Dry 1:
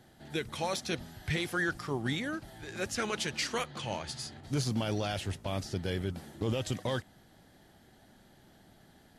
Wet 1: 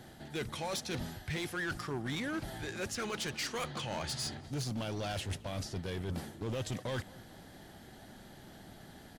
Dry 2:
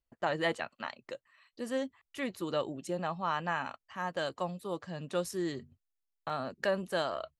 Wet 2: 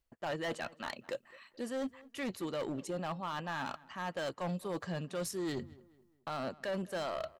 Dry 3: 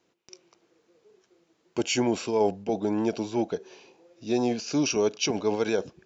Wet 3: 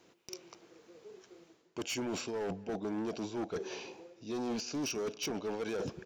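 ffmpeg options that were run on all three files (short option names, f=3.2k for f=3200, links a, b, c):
-filter_complex "[0:a]areverse,acompressor=threshold=-40dB:ratio=5,areverse,asoftclip=type=hard:threshold=-39dB,asplit=2[a][b];[b]adelay=214,lowpass=f=2.7k:p=1,volume=-21.5dB,asplit=2[c][d];[d]adelay=214,lowpass=f=2.7k:p=1,volume=0.42,asplit=2[e][f];[f]adelay=214,lowpass=f=2.7k:p=1,volume=0.42[g];[a][c][e][g]amix=inputs=4:normalize=0,volume=7dB"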